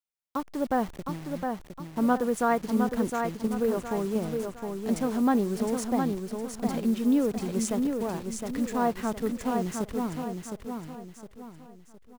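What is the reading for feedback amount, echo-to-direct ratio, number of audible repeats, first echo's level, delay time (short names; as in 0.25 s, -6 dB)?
38%, -4.5 dB, 4, -5.0 dB, 0.712 s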